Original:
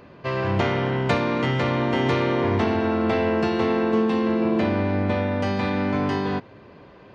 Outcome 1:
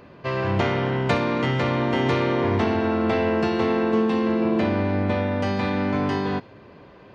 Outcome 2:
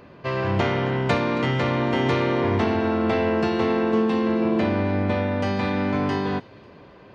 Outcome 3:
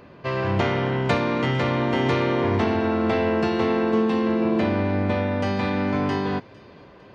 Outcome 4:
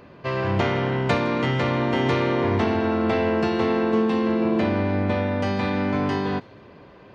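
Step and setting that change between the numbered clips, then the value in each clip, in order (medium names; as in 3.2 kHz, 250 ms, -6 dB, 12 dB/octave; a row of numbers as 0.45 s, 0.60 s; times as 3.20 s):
feedback echo behind a high-pass, time: 63 ms, 272 ms, 454 ms, 162 ms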